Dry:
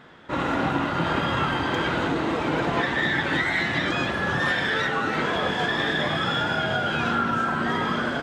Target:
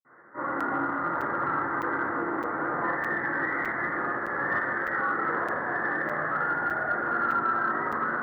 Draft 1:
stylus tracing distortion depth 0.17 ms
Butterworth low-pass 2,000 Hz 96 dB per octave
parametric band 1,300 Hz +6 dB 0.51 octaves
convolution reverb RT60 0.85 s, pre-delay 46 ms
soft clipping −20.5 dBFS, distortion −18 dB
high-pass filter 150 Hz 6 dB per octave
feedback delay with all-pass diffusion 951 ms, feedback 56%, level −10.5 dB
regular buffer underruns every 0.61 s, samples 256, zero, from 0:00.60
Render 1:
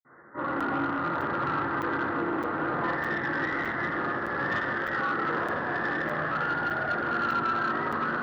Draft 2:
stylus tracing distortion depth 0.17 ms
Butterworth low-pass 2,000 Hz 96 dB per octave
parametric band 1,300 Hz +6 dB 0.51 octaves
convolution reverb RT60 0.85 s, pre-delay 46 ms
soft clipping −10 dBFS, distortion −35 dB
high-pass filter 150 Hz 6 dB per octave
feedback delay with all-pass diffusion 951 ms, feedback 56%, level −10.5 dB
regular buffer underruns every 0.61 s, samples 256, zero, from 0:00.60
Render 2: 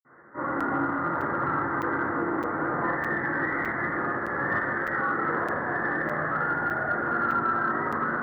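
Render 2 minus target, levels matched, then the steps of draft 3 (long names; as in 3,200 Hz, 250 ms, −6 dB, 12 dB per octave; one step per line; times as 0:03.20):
125 Hz band +5.5 dB
stylus tracing distortion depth 0.17 ms
Butterworth low-pass 2,000 Hz 96 dB per octave
parametric band 1,300 Hz +6 dB 0.51 octaves
convolution reverb RT60 0.85 s, pre-delay 46 ms
soft clipping −10 dBFS, distortion −35 dB
high-pass filter 410 Hz 6 dB per octave
feedback delay with all-pass diffusion 951 ms, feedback 56%, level −10.5 dB
regular buffer underruns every 0.61 s, samples 256, zero, from 0:00.60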